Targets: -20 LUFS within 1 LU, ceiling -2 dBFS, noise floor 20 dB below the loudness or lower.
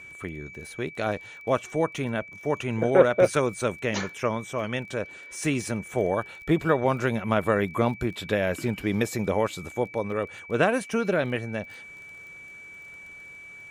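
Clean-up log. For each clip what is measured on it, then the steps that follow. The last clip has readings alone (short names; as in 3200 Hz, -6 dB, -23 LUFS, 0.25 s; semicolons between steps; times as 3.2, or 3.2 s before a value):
ticks 22/s; steady tone 2300 Hz; tone level -42 dBFS; loudness -26.5 LUFS; peak -4.0 dBFS; loudness target -20.0 LUFS
-> de-click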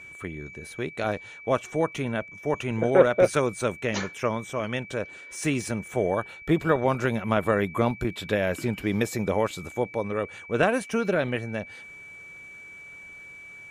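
ticks 0.073/s; steady tone 2300 Hz; tone level -42 dBFS
-> notch 2300 Hz, Q 30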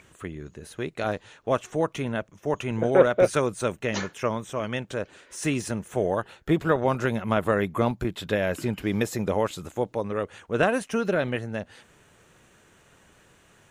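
steady tone none; loudness -26.5 LUFS; peak -5.5 dBFS; loudness target -20.0 LUFS
-> gain +6.5 dB; limiter -2 dBFS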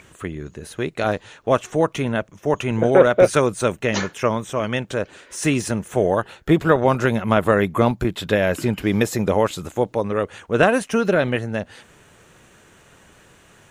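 loudness -20.5 LUFS; peak -2.0 dBFS; noise floor -52 dBFS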